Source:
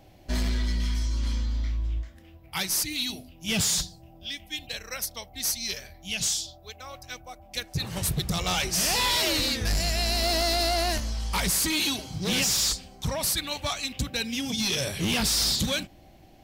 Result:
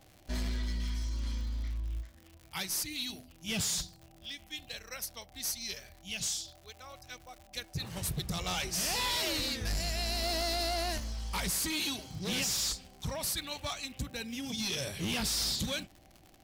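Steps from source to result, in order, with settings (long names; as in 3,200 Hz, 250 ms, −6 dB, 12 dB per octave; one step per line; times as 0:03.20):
0:13.85–0:14.44: parametric band 4,100 Hz −5 dB 1.6 octaves
surface crackle 120 per second −35 dBFS
level −7.5 dB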